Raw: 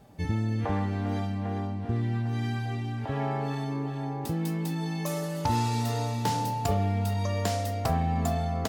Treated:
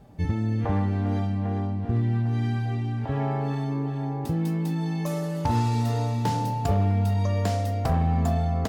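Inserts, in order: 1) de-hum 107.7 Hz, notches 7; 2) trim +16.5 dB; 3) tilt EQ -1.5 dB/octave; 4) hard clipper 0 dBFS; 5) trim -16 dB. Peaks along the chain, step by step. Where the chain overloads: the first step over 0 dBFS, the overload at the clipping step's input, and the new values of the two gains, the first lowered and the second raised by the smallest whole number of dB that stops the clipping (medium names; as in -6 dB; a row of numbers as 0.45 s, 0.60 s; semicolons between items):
-14.5 dBFS, +2.0 dBFS, +5.0 dBFS, 0.0 dBFS, -16.0 dBFS; step 2, 5.0 dB; step 2 +11.5 dB, step 5 -11 dB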